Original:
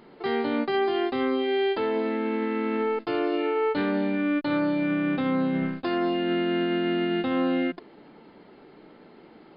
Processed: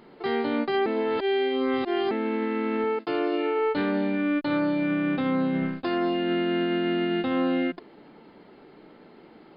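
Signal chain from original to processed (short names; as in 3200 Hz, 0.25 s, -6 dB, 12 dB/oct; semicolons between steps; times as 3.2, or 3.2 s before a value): 0.86–2.11 reverse; 2.84–3.59 HPF 130 Hz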